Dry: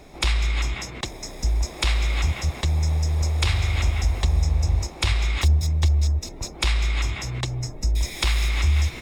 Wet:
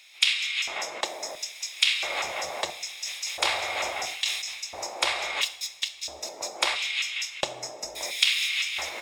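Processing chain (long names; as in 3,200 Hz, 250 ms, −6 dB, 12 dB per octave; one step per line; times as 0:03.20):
auto-filter high-pass square 0.74 Hz 620–2,800 Hz
coupled-rooms reverb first 0.58 s, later 2.9 s, from −21 dB, DRR 9 dB
0:02.86–0:04.64: level that may fall only so fast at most 57 dB per second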